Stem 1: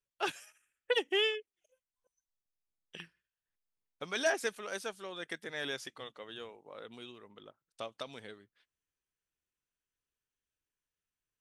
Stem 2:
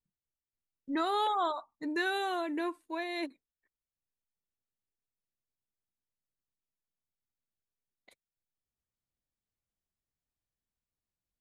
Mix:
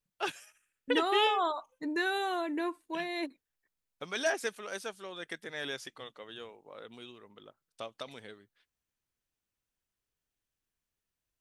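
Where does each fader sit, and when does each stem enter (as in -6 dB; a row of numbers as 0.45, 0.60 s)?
0.0, +0.5 dB; 0.00, 0.00 s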